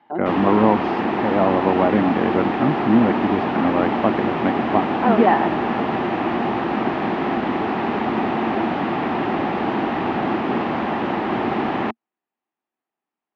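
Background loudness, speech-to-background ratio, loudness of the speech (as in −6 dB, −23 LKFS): −22.5 LKFS, 2.0 dB, −20.5 LKFS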